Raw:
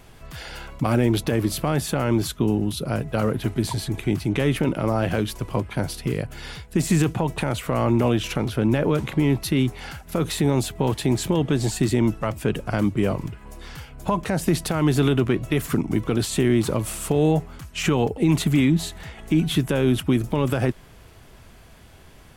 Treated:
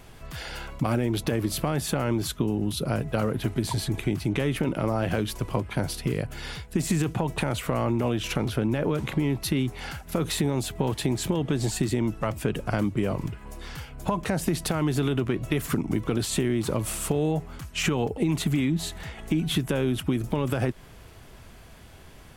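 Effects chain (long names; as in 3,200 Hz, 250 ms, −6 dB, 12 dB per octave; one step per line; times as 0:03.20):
downward compressor, threshold −21 dBFS, peak gain reduction 7 dB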